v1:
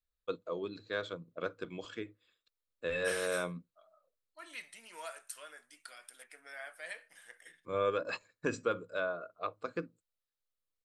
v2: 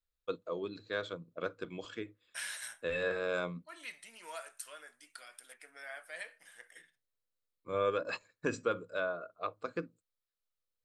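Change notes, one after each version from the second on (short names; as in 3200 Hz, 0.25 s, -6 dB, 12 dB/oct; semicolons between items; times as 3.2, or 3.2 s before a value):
second voice: entry -0.70 s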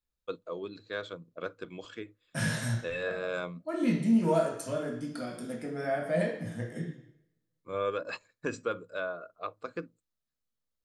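second voice: remove HPF 1500 Hz 12 dB/oct; reverb: on, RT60 0.75 s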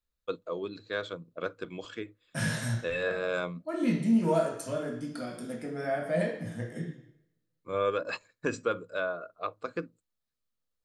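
first voice +3.0 dB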